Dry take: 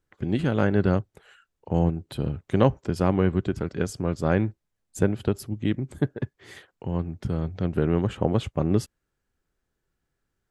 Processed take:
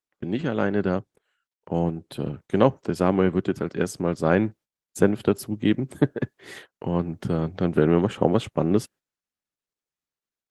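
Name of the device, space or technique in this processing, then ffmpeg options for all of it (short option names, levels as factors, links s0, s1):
video call: -af "highpass=170,dynaudnorm=f=380:g=13:m=2.99,agate=range=0.126:threshold=0.00631:ratio=16:detection=peak" -ar 48000 -c:a libopus -b:a 20k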